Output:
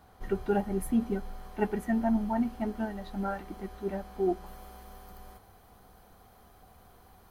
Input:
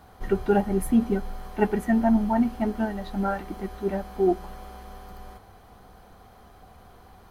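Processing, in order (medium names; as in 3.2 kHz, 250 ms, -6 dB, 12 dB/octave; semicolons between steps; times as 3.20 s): treble shelf 9.1 kHz +2 dB, from 4.46 s +11.5 dB; trim -6.5 dB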